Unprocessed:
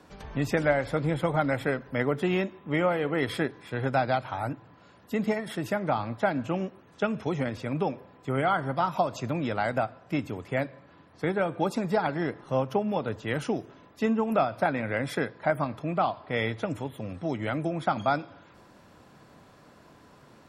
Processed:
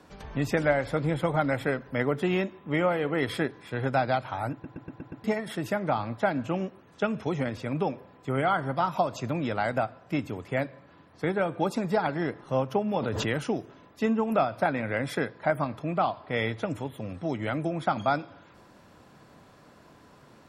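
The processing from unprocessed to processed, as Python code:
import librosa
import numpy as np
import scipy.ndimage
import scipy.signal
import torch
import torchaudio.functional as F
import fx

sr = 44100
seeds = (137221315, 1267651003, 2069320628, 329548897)

y = fx.pre_swell(x, sr, db_per_s=20.0, at=(12.94, 13.42))
y = fx.edit(y, sr, fx.stutter_over(start_s=4.52, slice_s=0.12, count=6), tone=tone)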